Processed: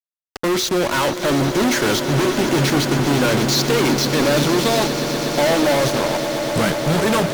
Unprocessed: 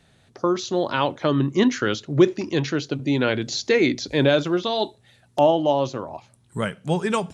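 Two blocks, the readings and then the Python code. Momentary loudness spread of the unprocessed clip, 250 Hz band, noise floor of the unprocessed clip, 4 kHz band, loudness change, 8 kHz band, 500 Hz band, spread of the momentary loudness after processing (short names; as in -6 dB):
10 LU, +4.0 dB, -59 dBFS, +8.0 dB, +4.5 dB, +13.5 dB, +3.0 dB, 4 LU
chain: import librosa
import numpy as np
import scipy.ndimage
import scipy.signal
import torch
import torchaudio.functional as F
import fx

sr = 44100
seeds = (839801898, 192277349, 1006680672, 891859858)

y = fx.fuzz(x, sr, gain_db=40.0, gate_db=-35.0)
y = fx.echo_swell(y, sr, ms=121, loudest=8, wet_db=-14.0)
y = y * librosa.db_to_amplitude(-3.0)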